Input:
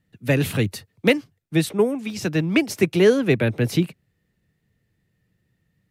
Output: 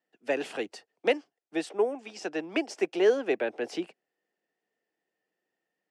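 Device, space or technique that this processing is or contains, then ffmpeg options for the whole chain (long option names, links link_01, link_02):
phone speaker on a table: -af "highpass=frequency=340:width=0.5412,highpass=frequency=340:width=1.3066,equalizer=frequency=750:width_type=q:width=4:gain=8,equalizer=frequency=1200:width_type=q:width=4:gain=-3,equalizer=frequency=2200:width_type=q:width=4:gain=-5,equalizer=frequency=3900:width_type=q:width=4:gain=-9,equalizer=frequency=6400:width_type=q:width=4:gain=-4,lowpass=frequency=7200:width=0.5412,lowpass=frequency=7200:width=1.3066,volume=-6dB"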